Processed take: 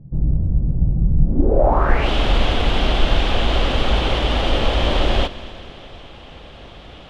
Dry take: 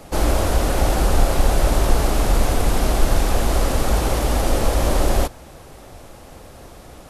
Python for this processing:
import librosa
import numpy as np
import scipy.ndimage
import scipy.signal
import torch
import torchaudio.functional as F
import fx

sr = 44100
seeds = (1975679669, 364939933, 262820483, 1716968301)

y = fx.echo_heads(x, sr, ms=81, heads='all three', feedback_pct=69, wet_db=-23)
y = fx.filter_sweep_lowpass(y, sr, from_hz=150.0, to_hz=3200.0, start_s=1.21, end_s=2.09, q=4.3)
y = fx.add_hum(y, sr, base_hz=50, snr_db=32)